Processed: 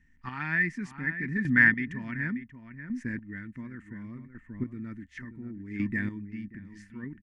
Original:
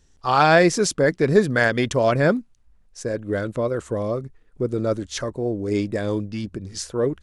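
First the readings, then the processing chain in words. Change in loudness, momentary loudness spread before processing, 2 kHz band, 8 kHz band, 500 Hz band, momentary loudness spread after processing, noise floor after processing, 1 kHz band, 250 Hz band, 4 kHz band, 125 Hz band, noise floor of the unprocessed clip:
−7.0 dB, 13 LU, −1.0 dB, below −25 dB, −29.5 dB, 21 LU, −60 dBFS, −22.0 dB, −8.0 dB, below −20 dB, −10.5 dB, −57 dBFS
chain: drawn EQ curve 120 Hz 0 dB, 250 Hz +8 dB, 530 Hz −27 dB, 1,200 Hz −8 dB, 2,000 Hz +11 dB, 3,800 Hz −16 dB
slap from a distant wall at 100 metres, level −10 dB
square-wave tremolo 0.69 Hz, depth 65%, duty 20%
de-essing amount 50%
hollow resonant body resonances 940/1,800 Hz, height 12 dB, ringing for 45 ms
level −6 dB

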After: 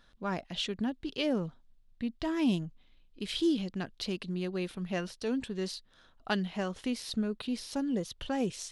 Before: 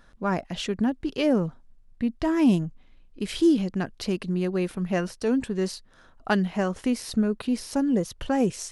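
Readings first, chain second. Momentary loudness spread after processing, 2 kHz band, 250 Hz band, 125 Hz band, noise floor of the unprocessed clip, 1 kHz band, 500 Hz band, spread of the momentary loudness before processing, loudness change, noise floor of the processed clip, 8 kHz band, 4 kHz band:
8 LU, −6.0 dB, −8.5 dB, −8.5 dB, −56 dBFS, −8.0 dB, −8.5 dB, 9 LU, −8.0 dB, −64 dBFS, −6.5 dB, −1.0 dB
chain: parametric band 3,600 Hz +10 dB 0.94 octaves
level −8.5 dB

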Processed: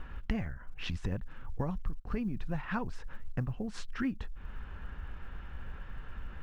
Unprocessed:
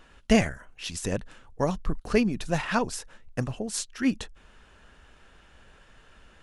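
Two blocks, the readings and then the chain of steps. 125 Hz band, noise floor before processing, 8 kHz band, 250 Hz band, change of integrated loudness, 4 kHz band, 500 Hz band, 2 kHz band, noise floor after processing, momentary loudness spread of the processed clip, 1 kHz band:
−3.5 dB, −57 dBFS, −23.0 dB, −9.5 dB, −11.0 dB, −12.0 dB, −15.0 dB, −10.0 dB, −46 dBFS, 11 LU, −10.5 dB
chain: low-pass filter 1,200 Hz 12 dB per octave
parametric band 490 Hz −14 dB 2.9 octaves
notch filter 640 Hz, Q 12
downward compressor 5 to 1, threshold −49 dBFS, peak gain reduction 24 dB
floating-point word with a short mantissa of 6 bits
level +16.5 dB

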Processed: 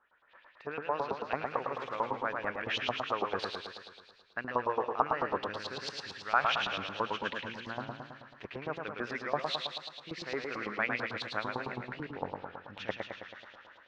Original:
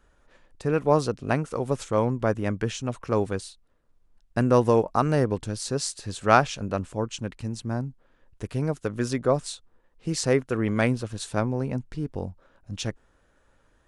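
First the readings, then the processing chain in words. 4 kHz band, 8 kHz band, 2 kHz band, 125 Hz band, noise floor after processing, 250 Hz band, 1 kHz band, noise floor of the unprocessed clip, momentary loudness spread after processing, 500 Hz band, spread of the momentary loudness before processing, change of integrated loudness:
−0.5 dB, −20.5 dB, −1.0 dB, −20.5 dB, −61 dBFS, −15.5 dB, −4.5 dB, −64 dBFS, 13 LU, −11.5 dB, 13 LU, −9.0 dB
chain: reversed playback
downward compressor 10 to 1, threshold −35 dBFS, peak gain reduction 23.5 dB
reversed playback
feedback echo with a high-pass in the loop 123 ms, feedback 64%, high-pass 1,200 Hz, level −9 dB
automatic gain control gain up to 15.5 dB
high-frequency loss of the air 250 metres
auto-filter band-pass saw up 9 Hz 860–4,000 Hz
feedback echo with a swinging delay time 108 ms, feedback 61%, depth 106 cents, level −4.5 dB
level +3.5 dB

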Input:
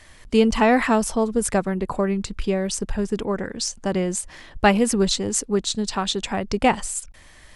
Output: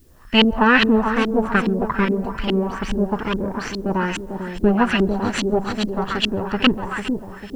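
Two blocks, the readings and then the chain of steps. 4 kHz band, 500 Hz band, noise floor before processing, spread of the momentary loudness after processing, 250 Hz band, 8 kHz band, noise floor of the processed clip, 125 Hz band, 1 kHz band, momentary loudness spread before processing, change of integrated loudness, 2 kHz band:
+4.5 dB, 0.0 dB, −48 dBFS, 11 LU, +3.5 dB, −13.5 dB, −39 dBFS, +3.0 dB, +1.5 dB, 8 LU, +2.0 dB, +6.5 dB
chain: lower of the sound and its delayed copy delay 0.69 ms
steady tone 5,300 Hz −48 dBFS
on a send: echo with a time of its own for lows and highs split 830 Hz, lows 448 ms, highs 135 ms, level −6.5 dB
on the sum: auto-filter low-pass saw up 2.4 Hz 280–3,200 Hz
bit-depth reduction 12 bits, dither triangular
high-shelf EQ 2,200 Hz +11 dB

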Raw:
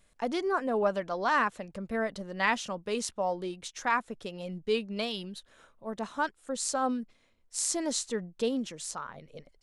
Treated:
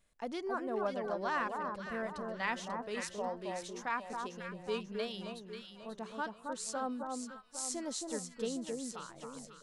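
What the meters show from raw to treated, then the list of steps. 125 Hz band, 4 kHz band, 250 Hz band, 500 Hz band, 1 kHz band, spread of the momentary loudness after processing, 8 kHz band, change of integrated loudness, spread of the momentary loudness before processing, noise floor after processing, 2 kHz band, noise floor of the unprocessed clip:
−6.5 dB, −7.5 dB, −6.5 dB, −6.5 dB, −6.5 dB, 9 LU, −7.5 dB, −7.0 dB, 13 LU, −57 dBFS, −7.5 dB, −66 dBFS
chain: delay that swaps between a low-pass and a high-pass 270 ms, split 1,300 Hz, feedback 63%, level −3 dB
level −8.5 dB

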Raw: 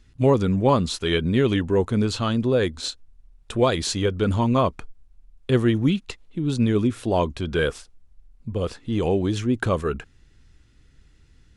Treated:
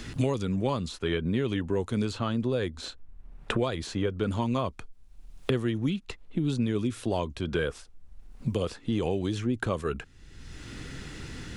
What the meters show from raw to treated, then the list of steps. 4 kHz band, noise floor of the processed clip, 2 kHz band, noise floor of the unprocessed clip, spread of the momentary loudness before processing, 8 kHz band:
−7.5 dB, −52 dBFS, −6.0 dB, −56 dBFS, 9 LU, −9.5 dB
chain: multiband upward and downward compressor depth 100%
level −7.5 dB

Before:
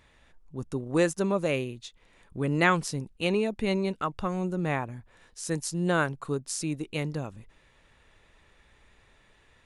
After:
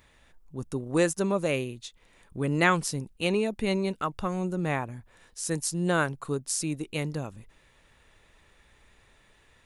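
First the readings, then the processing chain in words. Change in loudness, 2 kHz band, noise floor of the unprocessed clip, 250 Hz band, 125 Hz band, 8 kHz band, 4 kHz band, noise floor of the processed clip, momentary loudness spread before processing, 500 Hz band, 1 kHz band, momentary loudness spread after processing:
+0.5 dB, +0.5 dB, −62 dBFS, 0.0 dB, 0.0 dB, +4.0 dB, +1.0 dB, −62 dBFS, 15 LU, 0.0 dB, 0.0 dB, 17 LU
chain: high-shelf EQ 9,700 Hz +10.5 dB

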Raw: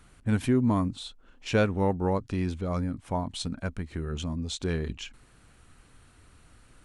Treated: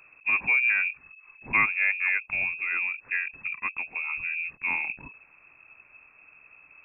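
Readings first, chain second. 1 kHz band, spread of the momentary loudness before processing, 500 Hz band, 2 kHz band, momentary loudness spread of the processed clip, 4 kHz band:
−1.5 dB, 12 LU, −21.0 dB, +16.5 dB, 10 LU, below −10 dB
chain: dynamic equaliser 1,600 Hz, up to +5 dB, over −53 dBFS, Q 3.5
voice inversion scrambler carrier 2,600 Hz

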